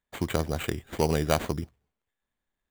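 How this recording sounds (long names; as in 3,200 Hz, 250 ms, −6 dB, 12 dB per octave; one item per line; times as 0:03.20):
aliases and images of a low sample rate 5,300 Hz, jitter 0%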